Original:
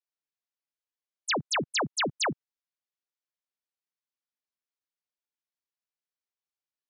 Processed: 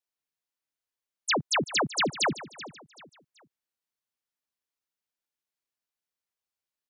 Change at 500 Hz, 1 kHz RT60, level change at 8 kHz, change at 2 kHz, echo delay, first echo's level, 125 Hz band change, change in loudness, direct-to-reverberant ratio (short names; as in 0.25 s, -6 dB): +2.0 dB, none, +2.0 dB, +2.0 dB, 0.382 s, -16.0 dB, +2.0 dB, +2.0 dB, none